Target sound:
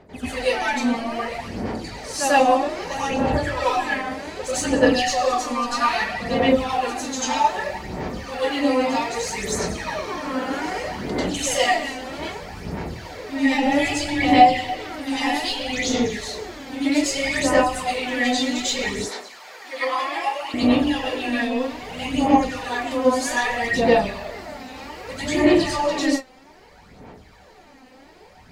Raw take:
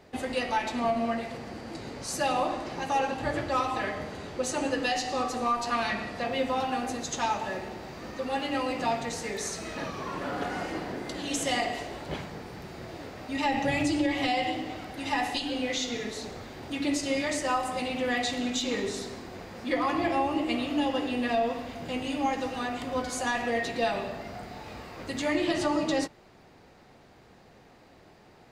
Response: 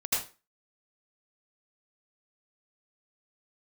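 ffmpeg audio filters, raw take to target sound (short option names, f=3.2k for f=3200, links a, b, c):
-filter_complex "[0:a]asettb=1/sr,asplit=3[a][b][c];[a]atrim=end=18.954[d];[b]atrim=start=18.95:end=20.54,asetpts=PTS-STARTPTS,afade=t=in:d=0.004:c=qsin,afade=t=out:st=1.586:d=0.004:c=qsin,highpass=830[e];[c]atrim=start=20.536[f];[d][e]acrossfade=d=0.004:c1=hsin:c2=qsin[g];[g][f]acrossfade=d=0.004:c1=qsin:c2=hsin,aphaser=in_gain=1:out_gain=1:delay=3.9:decay=0.78:speed=0.63:type=sinusoidal[h];[1:a]atrim=start_sample=2205,afade=t=out:st=0.17:d=0.01,atrim=end_sample=7938,asetrate=37485,aresample=44100[i];[h][i]afir=irnorm=-1:irlink=0,volume=-5dB"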